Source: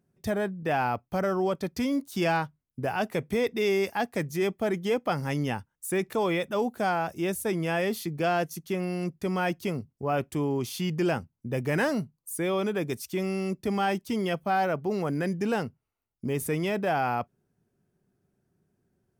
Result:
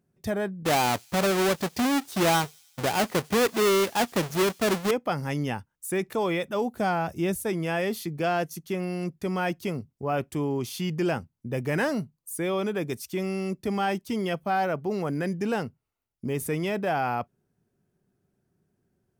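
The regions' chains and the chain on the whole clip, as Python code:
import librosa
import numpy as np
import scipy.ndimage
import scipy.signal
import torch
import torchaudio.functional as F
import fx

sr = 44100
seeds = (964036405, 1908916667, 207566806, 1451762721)

y = fx.chain(x, sr, fx.halfwave_hold(),
    fx.low_shelf(hz=90.0, db=-11.0),
    fx.echo_wet_highpass(ms=97, feedback_pct=66, hz=4800.0, wet_db=-20.5), at=(0.65, 4.91))
y = fx.chain(y, sr, fx.low_shelf(hz=150.0, db=11.0),
    fx.notch(hz=1600.0, q=29.0), at=(6.74, 7.37))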